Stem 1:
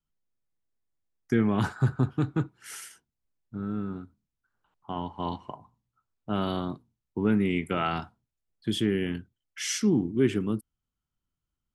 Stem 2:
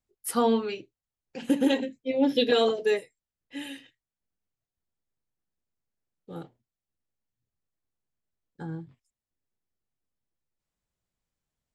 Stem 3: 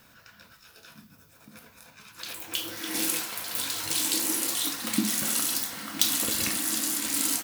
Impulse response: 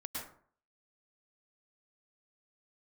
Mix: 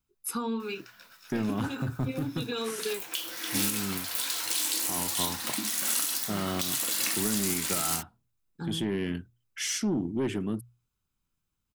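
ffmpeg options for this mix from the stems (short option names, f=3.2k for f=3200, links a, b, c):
-filter_complex "[0:a]highshelf=f=11k:g=8,asoftclip=type=tanh:threshold=-20dB,volume=1dB[a];[1:a]aecho=1:1:0.8:0.83,acompressor=threshold=-26dB:ratio=6,volume=-1.5dB[b];[2:a]highpass=f=630:p=1,adelay=600,volume=0.5dB[c];[a][b]amix=inputs=2:normalize=0,bandreject=f=60:t=h:w=6,bandreject=f=120:t=h:w=6,alimiter=limit=-22.5dB:level=0:latency=1:release=173,volume=0dB[d];[c][d]amix=inputs=2:normalize=0,alimiter=limit=-15.5dB:level=0:latency=1:release=200"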